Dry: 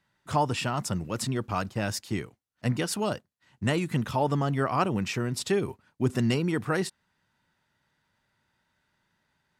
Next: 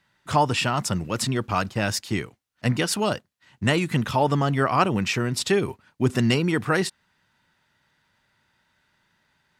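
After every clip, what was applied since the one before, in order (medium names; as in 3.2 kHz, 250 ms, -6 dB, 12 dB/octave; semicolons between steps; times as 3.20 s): peaking EQ 2.8 kHz +4 dB 2.6 oct; trim +4 dB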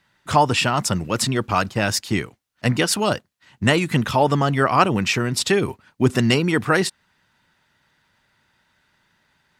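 harmonic-percussive split percussive +3 dB; trim +2 dB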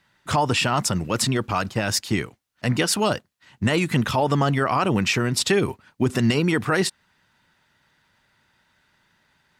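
peak limiter -10.5 dBFS, peak gain reduction 9 dB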